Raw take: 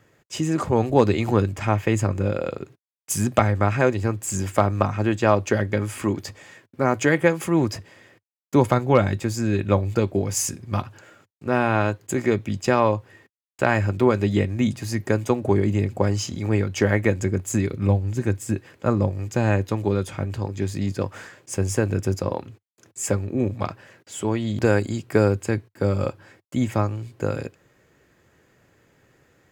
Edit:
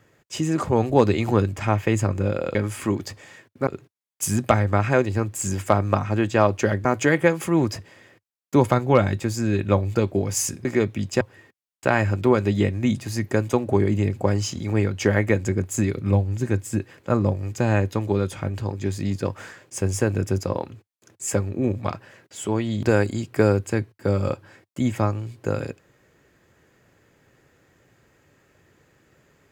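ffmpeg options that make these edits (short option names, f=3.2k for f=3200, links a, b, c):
-filter_complex "[0:a]asplit=6[a][b][c][d][e][f];[a]atrim=end=2.552[g];[b]atrim=start=5.728:end=6.852[h];[c]atrim=start=2.548:end=5.732[i];[d]atrim=start=6.848:end=10.652[j];[e]atrim=start=12.158:end=12.722[k];[f]atrim=start=12.968[l];[g][h]acrossfade=d=0.004:c1=hsin:c2=hsin[m];[m][i]acrossfade=d=0.004:c1=hsin:c2=hsin[n];[n][j]acrossfade=d=0.004:c1=hsin:c2=hsin[o];[o][k]acrossfade=d=0.004:c1=hsin:c2=hsin[p];[p][l]acrossfade=d=0.004:c1=hsin:c2=hsin"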